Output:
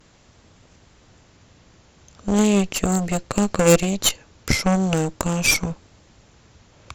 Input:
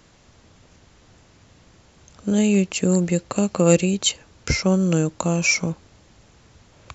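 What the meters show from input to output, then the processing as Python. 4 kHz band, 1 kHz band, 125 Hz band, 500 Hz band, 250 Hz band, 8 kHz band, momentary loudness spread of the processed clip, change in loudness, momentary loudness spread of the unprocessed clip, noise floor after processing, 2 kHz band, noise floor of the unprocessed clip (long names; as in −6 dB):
+1.5 dB, +5.5 dB, −1.5 dB, +0.5 dB, −1.0 dB, can't be measured, 9 LU, +0.5 dB, 9 LU, −55 dBFS, +1.0 dB, −54 dBFS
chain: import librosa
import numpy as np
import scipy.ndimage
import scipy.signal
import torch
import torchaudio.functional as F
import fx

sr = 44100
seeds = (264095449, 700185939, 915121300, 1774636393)

y = fx.vibrato(x, sr, rate_hz=0.41, depth_cents=20.0)
y = fx.cheby_harmonics(y, sr, harmonics=(8,), levels_db=(-15,), full_scale_db=-1.5)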